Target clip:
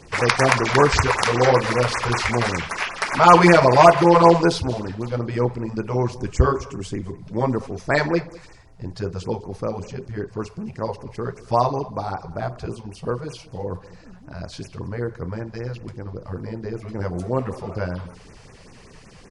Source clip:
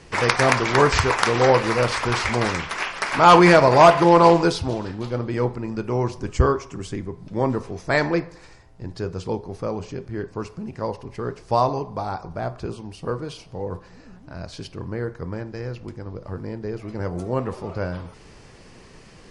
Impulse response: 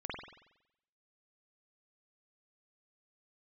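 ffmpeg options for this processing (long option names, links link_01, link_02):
-af "aecho=1:1:206:0.0891,afftfilt=real='re*(1-between(b*sr/1024,250*pow(4100/250,0.5+0.5*sin(2*PI*5.2*pts/sr))/1.41,250*pow(4100/250,0.5+0.5*sin(2*PI*5.2*pts/sr))*1.41))':imag='im*(1-between(b*sr/1024,250*pow(4100/250,0.5+0.5*sin(2*PI*5.2*pts/sr))/1.41,250*pow(4100/250,0.5+0.5*sin(2*PI*5.2*pts/sr))*1.41))':win_size=1024:overlap=0.75,volume=1.5dB"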